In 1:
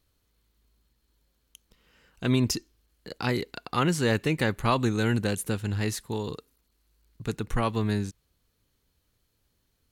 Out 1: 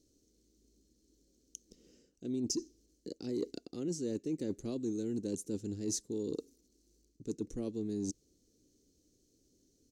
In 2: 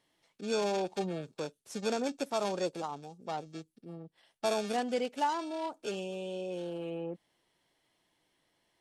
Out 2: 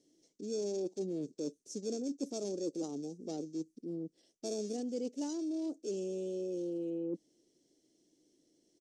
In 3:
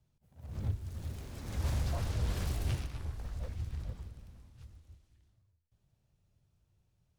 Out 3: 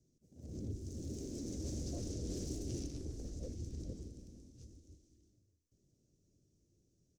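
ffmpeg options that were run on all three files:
ffmpeg -i in.wav -af "firequalizer=gain_entry='entry(110,0);entry(300,14);entry(930,-23);entry(3400,-11);entry(6000,8);entry(11000,-11)':delay=0.05:min_phase=1,areverse,acompressor=threshold=-35dB:ratio=5,areverse,lowshelf=frequency=280:gain=-8,volume=3dB" out.wav

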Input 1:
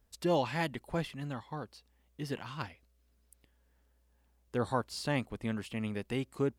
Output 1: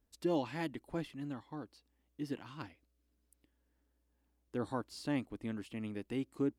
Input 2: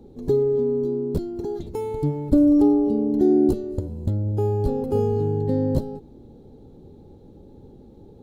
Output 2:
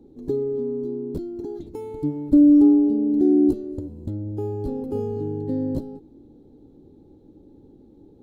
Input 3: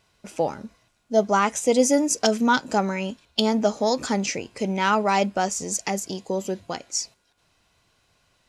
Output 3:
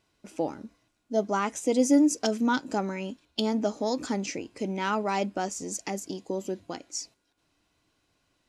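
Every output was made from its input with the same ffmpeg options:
ffmpeg -i in.wav -af "equalizer=frequency=300:width_type=o:width=0.51:gain=11.5,volume=-8dB" out.wav

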